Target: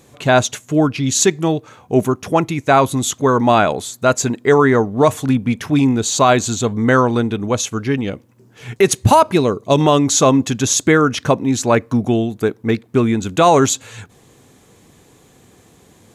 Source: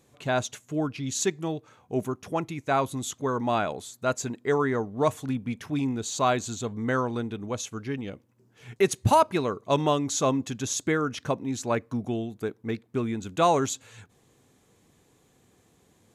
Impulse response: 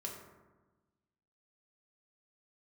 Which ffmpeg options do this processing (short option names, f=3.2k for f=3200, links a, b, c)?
-filter_complex "[0:a]asettb=1/sr,asplit=3[a][b][c];[a]atrim=end=9.344[d];[b]atrim=start=9.34:end=9.81,asetpts=PTS-STARTPTS,afade=t=in:d=0.004:c=qsin,afade=t=out:st=0.466:d=0.004:c=qsin,equalizer=f=1.4k:w=0.78:g=-7.5[e];[c]atrim=start=9.806[f];[d][e]acrossfade=d=0.004:c1=hsin:c2=qsin[g];[g][f]acrossfade=d=0.004:c1=qsin:c2=hsin,alimiter=level_in=14.5dB:limit=-1dB:release=50:level=0:latency=1,volume=-1dB"